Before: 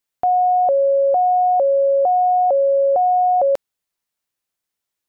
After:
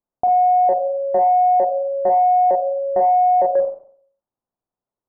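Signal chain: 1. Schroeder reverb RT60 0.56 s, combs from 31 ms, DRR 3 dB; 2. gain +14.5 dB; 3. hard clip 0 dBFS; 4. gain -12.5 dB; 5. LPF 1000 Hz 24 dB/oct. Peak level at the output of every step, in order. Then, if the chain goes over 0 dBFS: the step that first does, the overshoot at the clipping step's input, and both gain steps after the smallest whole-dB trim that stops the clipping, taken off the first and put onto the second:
-5.0, +9.5, 0.0, -12.5, -11.0 dBFS; step 2, 9.5 dB; step 2 +4.5 dB, step 4 -2.5 dB

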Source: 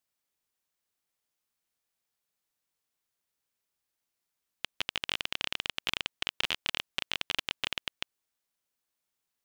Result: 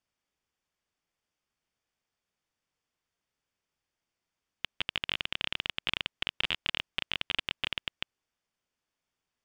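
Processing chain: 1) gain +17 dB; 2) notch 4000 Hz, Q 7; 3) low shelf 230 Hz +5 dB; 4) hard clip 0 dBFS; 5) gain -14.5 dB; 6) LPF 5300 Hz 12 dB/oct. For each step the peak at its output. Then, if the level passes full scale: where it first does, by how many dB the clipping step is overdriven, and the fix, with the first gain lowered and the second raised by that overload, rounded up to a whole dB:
+5.5, +4.5, +5.0, 0.0, -14.5, -14.0 dBFS; step 1, 5.0 dB; step 1 +12 dB, step 5 -9.5 dB

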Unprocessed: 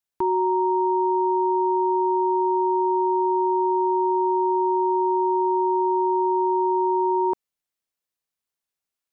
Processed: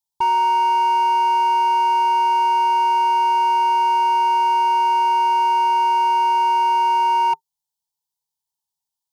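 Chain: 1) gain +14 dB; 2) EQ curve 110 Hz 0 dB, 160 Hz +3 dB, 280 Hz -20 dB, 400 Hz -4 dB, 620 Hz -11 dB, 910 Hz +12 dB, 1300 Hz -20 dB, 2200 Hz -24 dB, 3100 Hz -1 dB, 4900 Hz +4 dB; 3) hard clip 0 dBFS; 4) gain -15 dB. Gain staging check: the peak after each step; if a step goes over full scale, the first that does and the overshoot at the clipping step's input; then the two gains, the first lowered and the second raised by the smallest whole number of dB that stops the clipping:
-1.0, +4.0, 0.0, -15.0 dBFS; step 2, 4.0 dB; step 1 +10 dB, step 4 -11 dB

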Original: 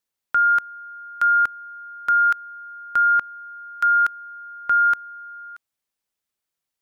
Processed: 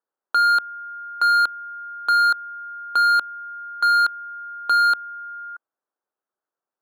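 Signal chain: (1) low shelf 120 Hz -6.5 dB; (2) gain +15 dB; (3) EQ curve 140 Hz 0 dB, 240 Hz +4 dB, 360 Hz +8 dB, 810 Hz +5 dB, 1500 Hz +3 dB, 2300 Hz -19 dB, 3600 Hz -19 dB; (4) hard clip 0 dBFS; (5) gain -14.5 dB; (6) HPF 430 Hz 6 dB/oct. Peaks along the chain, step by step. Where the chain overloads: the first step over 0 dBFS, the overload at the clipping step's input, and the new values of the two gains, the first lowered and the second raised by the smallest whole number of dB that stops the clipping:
-13.0, +2.0, +5.0, 0.0, -14.5, -12.5 dBFS; step 2, 5.0 dB; step 2 +10 dB, step 5 -9.5 dB

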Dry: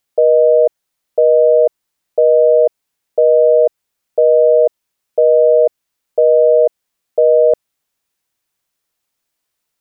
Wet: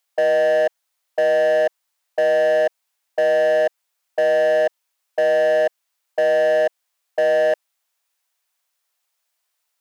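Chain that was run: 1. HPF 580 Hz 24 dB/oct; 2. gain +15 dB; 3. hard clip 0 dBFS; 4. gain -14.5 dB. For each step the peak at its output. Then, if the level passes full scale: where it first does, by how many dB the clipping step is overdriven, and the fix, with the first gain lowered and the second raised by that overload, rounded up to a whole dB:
-7.5, +7.5, 0.0, -14.5 dBFS; step 2, 7.5 dB; step 2 +7 dB, step 4 -6.5 dB

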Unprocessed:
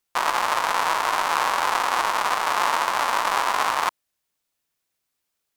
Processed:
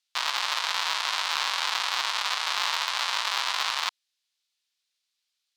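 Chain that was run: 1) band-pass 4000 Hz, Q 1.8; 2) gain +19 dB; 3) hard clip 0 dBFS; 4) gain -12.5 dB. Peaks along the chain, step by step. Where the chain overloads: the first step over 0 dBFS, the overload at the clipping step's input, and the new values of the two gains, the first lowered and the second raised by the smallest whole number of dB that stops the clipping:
-15.5, +3.5, 0.0, -12.5 dBFS; step 2, 3.5 dB; step 2 +15 dB, step 4 -8.5 dB

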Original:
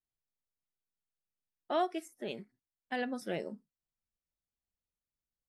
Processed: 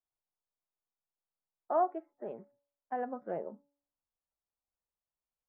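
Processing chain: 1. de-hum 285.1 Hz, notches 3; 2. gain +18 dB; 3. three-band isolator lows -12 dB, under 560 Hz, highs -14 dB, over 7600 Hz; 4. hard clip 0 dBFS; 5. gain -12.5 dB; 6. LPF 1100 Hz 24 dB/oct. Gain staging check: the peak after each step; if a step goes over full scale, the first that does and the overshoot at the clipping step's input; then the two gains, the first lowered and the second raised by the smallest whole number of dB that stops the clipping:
-21.0, -3.0, -4.5, -4.5, -17.0, -19.5 dBFS; no overload

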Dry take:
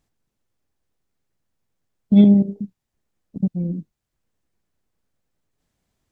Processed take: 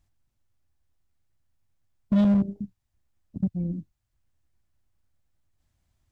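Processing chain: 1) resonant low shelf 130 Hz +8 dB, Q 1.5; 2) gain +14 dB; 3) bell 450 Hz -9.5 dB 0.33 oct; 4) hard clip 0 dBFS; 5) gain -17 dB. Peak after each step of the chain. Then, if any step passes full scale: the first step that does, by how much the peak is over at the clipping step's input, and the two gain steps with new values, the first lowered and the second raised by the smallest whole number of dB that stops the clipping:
-4.5, +9.5, +9.0, 0.0, -17.0 dBFS; step 2, 9.0 dB; step 2 +5 dB, step 5 -8 dB

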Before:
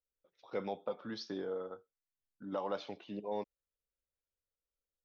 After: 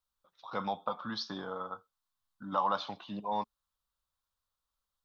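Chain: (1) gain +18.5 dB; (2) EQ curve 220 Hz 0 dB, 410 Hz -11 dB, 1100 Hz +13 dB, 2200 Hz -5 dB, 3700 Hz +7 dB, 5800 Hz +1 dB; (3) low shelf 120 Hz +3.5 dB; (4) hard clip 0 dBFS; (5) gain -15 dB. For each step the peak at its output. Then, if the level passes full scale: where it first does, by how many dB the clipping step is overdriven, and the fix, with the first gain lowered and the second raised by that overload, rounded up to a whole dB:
-6.5, -2.0, -2.0, -2.0, -17.0 dBFS; no overload

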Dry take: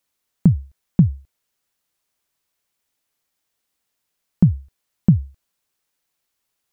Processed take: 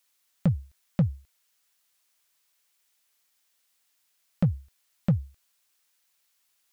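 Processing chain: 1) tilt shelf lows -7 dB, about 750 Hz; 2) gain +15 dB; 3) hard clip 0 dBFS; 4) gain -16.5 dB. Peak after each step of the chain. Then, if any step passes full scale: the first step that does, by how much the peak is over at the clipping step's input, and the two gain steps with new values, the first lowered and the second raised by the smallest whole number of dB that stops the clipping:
-9.0, +6.0, 0.0, -16.5 dBFS; step 2, 6.0 dB; step 2 +9 dB, step 4 -10.5 dB

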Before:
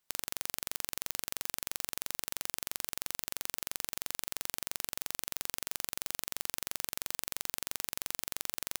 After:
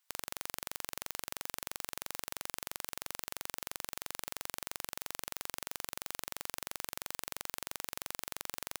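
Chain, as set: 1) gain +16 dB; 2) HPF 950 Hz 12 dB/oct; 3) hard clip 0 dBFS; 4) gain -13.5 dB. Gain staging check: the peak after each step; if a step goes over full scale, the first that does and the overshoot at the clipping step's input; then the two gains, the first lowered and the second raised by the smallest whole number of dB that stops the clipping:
+9.5, +8.5, 0.0, -13.5 dBFS; step 1, 8.5 dB; step 1 +7 dB, step 4 -4.5 dB

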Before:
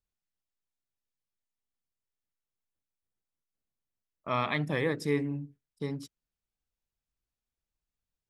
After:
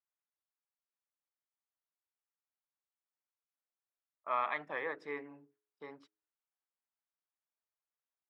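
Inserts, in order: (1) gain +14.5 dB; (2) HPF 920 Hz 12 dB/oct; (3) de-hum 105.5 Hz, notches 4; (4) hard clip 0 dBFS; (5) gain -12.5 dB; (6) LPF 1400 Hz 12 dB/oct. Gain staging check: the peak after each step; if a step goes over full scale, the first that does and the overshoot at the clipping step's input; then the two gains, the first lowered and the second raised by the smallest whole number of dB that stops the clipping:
-2.0, -3.0, -3.0, -3.0, -15.5, -22.5 dBFS; no overload

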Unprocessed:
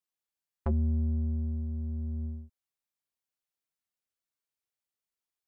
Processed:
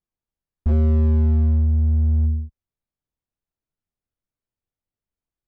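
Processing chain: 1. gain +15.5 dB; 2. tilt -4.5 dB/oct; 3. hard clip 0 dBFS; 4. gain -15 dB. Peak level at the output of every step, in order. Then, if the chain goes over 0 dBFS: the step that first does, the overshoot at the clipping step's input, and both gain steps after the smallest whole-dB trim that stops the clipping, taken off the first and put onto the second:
-5.5, +10.0, 0.0, -15.0 dBFS; step 2, 10.0 dB; step 1 +5.5 dB, step 4 -5 dB

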